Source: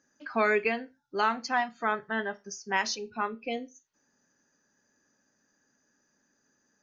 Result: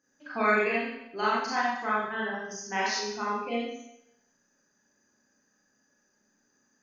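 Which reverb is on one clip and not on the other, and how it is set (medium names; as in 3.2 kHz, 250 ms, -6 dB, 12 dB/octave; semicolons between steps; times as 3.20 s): Schroeder reverb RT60 0.79 s, combs from 30 ms, DRR -7 dB; trim -6.5 dB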